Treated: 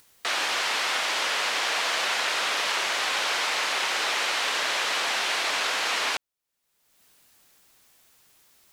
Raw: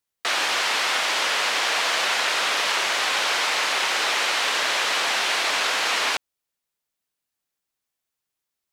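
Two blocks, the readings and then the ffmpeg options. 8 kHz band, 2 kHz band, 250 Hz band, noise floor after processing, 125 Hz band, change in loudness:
−3.5 dB, −3.5 dB, −3.5 dB, −77 dBFS, can't be measured, −3.5 dB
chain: -af "acompressor=mode=upward:threshold=-34dB:ratio=2.5,volume=-3.5dB"

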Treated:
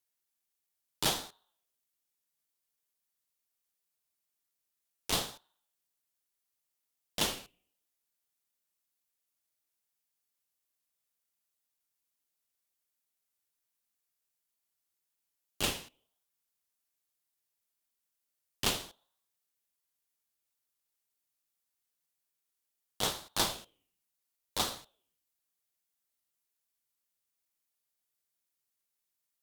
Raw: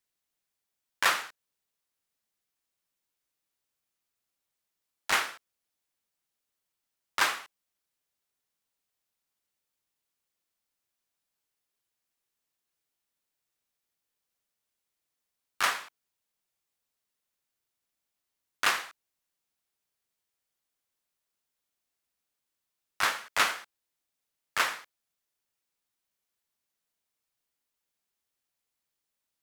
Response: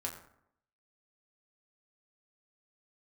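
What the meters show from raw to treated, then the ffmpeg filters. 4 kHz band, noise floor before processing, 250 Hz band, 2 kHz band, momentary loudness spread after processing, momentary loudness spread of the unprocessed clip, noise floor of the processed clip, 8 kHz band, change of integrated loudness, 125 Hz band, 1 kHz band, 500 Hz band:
−0.5 dB, −85 dBFS, +8.0 dB, −13.5 dB, 14 LU, 14 LU, −85 dBFS, 0.0 dB, −4.5 dB, can't be measured, −9.0 dB, +1.0 dB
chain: -filter_complex "[0:a]aemphasis=mode=production:type=cd,asplit=2[link_01][link_02];[1:a]atrim=start_sample=2205[link_03];[link_02][link_03]afir=irnorm=-1:irlink=0,volume=-19dB[link_04];[link_01][link_04]amix=inputs=2:normalize=0,aeval=exprs='val(0)*sin(2*PI*1900*n/s+1900*0.2/0.73*sin(2*PI*0.73*n/s))':channel_layout=same,volume=-4.5dB"

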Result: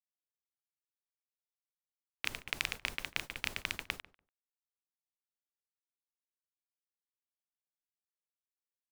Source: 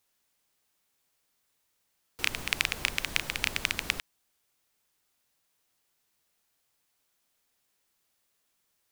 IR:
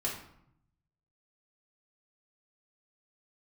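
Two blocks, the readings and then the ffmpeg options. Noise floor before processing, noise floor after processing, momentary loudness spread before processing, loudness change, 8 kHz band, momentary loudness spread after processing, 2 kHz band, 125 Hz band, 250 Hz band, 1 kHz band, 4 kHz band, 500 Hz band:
−76 dBFS, below −85 dBFS, 4 LU, −8.0 dB, −10.5 dB, 5 LU, −7.5 dB, −8.5 dB, −8.0 dB, −7.0 dB, −8.5 dB, −7.0 dB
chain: -filter_complex "[0:a]agate=range=-58dB:threshold=-35dB:ratio=16:detection=peak,asplit=2[link_01][link_02];[link_02]adelay=145,lowpass=frequency=1600:poles=1,volume=-18dB,asplit=2[link_03][link_04];[link_04]adelay=145,lowpass=frequency=1600:poles=1,volume=0.17[link_05];[link_01][link_03][link_05]amix=inputs=3:normalize=0,volume=-6.5dB"

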